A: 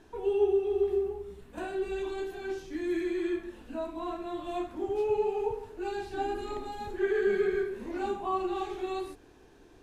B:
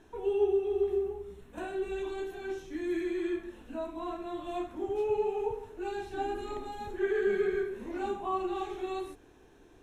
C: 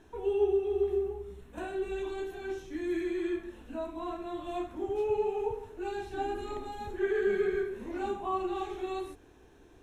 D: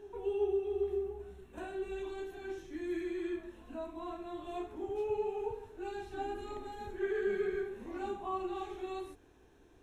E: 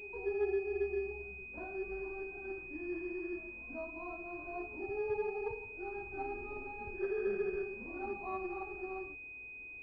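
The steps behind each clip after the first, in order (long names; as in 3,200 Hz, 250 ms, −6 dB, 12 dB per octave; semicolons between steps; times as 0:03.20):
notch filter 4,700 Hz, Q 5.1; level −1.5 dB
parametric band 70 Hz +5 dB 0.83 octaves
backwards echo 381 ms −19.5 dB; level −5 dB
parametric band 330 Hz −4.5 dB 0.21 octaves; switching amplifier with a slow clock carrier 2,500 Hz; level −1 dB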